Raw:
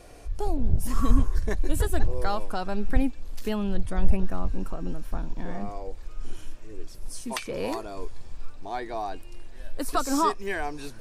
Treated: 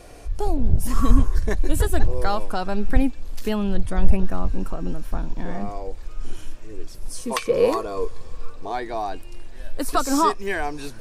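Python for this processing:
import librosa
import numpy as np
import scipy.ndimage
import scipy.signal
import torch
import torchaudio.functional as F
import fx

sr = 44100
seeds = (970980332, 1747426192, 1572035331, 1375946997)

y = fx.small_body(x, sr, hz=(480.0, 1100.0), ring_ms=45, db=13, at=(7.18, 8.72))
y = F.gain(torch.from_numpy(y), 4.5).numpy()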